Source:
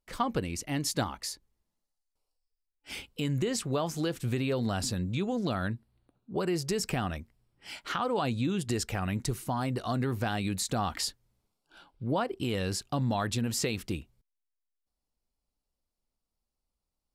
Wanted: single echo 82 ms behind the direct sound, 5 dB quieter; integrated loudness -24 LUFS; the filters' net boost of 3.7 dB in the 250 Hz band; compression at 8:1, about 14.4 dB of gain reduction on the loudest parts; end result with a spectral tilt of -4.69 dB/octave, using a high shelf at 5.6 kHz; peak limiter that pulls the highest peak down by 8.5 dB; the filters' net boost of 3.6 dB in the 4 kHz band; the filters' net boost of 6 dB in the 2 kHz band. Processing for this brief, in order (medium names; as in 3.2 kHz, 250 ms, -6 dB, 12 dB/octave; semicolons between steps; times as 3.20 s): peaking EQ 250 Hz +4.5 dB; peaking EQ 2 kHz +7.5 dB; peaking EQ 4 kHz +6 dB; treble shelf 5.6 kHz -8.5 dB; compression 8:1, threshold -38 dBFS; peak limiter -32.5 dBFS; delay 82 ms -5 dB; trim +18 dB